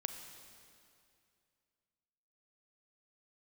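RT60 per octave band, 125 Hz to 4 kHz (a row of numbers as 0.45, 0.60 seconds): 2.7, 2.6, 2.5, 2.4, 2.3, 2.2 seconds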